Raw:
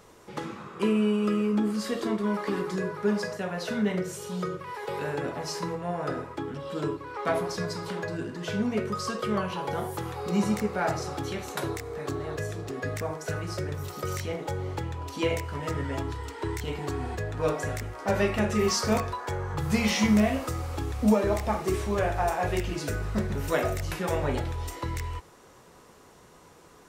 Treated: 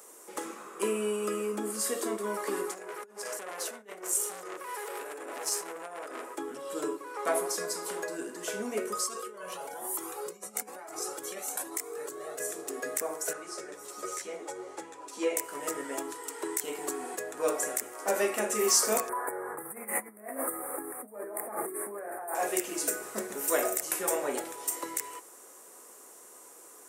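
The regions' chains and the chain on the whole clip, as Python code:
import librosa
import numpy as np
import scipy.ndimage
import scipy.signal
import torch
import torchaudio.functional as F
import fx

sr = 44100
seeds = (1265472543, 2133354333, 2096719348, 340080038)

y = fx.chain(x, sr, fx.highpass(hz=210.0, slope=12),
    fx.over_compress(threshold_db=-34.0, ratio=-0.5),
    fx.transformer_sat(knee_hz=2100.0), at=(2.71, 6.35))
y = fx.chain(y, sr, fx.over_compress(threshold_db=-33.0, ratio=-1.0),
    fx.comb_cascade(direction='rising', hz=1.1), at=(9.04, 12.4))
y = fx.chain(y, sr, fx.lowpass(hz=7200.0, slope=12),
    fx.notch(hz=3000.0, q=23.0),
    fx.ensemble(), at=(13.33, 15.37))
y = fx.chain(y, sr, fx.ellip_bandstop(low_hz=1900.0, high_hz=9500.0, order=3, stop_db=50),
    fx.over_compress(threshold_db=-34.0, ratio=-1.0), at=(19.09, 22.35))
y = scipy.signal.sosfilt(scipy.signal.butter(4, 300.0, 'highpass', fs=sr, output='sos'), y)
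y = fx.high_shelf_res(y, sr, hz=6100.0, db=14.0, q=1.5)
y = fx.notch(y, sr, hz=910.0, q=19.0)
y = y * 10.0 ** (-1.5 / 20.0)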